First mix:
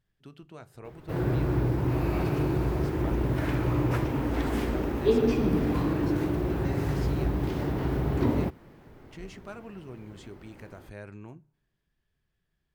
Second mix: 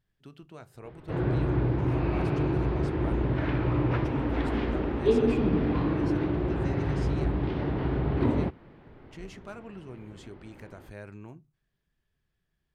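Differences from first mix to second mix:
background: add LPF 3900 Hz 24 dB/oct; reverb: off

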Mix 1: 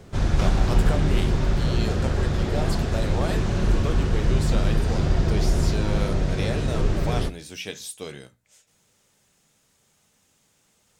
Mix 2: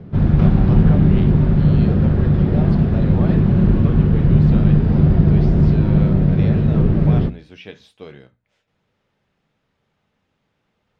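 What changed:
background: add bell 170 Hz +15 dB 1.9 oct; master: add air absorption 340 m

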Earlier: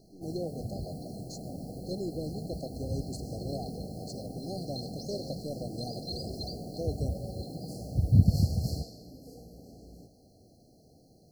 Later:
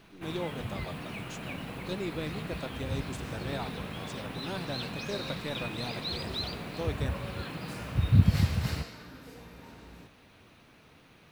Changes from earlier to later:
speech: add bell 4100 Hz -13 dB 0.33 oct; master: remove brick-wall FIR band-stop 800–4100 Hz

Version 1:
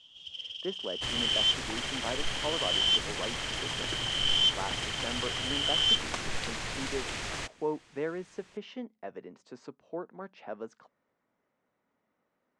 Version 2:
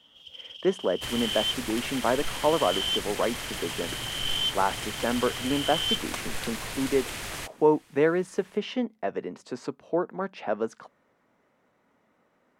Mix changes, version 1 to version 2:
speech +11.5 dB; first sound: add high shelf 3300 Hz -6 dB; master: remove LPF 7700 Hz 24 dB/oct

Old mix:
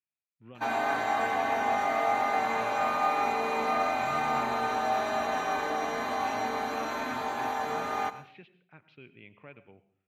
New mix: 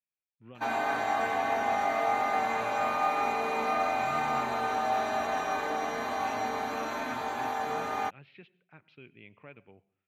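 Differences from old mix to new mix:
speech: send -7.0 dB; background: send off

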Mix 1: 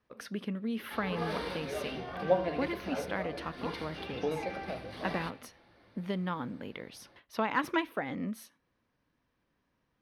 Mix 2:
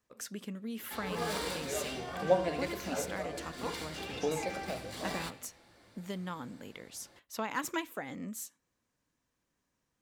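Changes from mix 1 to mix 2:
speech -5.5 dB; master: remove running mean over 6 samples

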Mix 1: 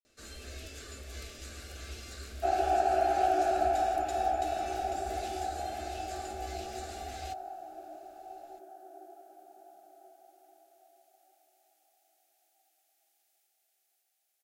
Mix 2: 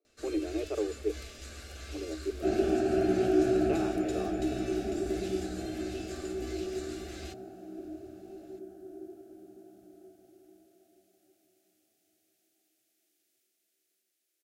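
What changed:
speech: unmuted; second sound: remove resonant high-pass 790 Hz, resonance Q 7.8; master: add high shelf 12000 Hz -6 dB

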